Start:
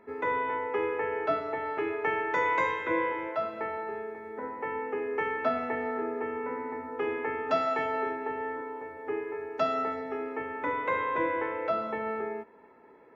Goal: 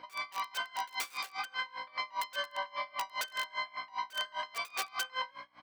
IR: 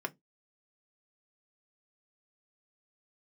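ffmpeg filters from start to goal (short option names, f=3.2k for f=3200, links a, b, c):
-filter_complex "[0:a]asetrate=103194,aresample=44100,highshelf=f=5.3k:g=-7.5,asplit=4[a][b][c][d];[b]adelay=145,afreqshift=50,volume=-14.5dB[e];[c]adelay=290,afreqshift=100,volume=-23.9dB[f];[d]adelay=435,afreqshift=150,volume=-33.2dB[g];[a][e][f][g]amix=inputs=4:normalize=0,aeval=exprs='(mod(13.3*val(0)+1,2)-1)/13.3':c=same,alimiter=level_in=4.5dB:limit=-24dB:level=0:latency=1:release=14,volume=-4.5dB,asplit=2[h][i];[1:a]atrim=start_sample=2205,asetrate=66150,aresample=44100[j];[i][j]afir=irnorm=-1:irlink=0,volume=-4dB[k];[h][k]amix=inputs=2:normalize=0,aeval=exprs='val(0)+0.00891*(sin(2*PI*60*n/s)+sin(2*PI*2*60*n/s)/2+sin(2*PI*3*60*n/s)/3+sin(2*PI*4*60*n/s)/4+sin(2*PI*5*60*n/s)/5)':c=same,highpass=520,aeval=exprs='val(0)*pow(10,-25*(0.5-0.5*cos(2*PI*5*n/s))/20)':c=same"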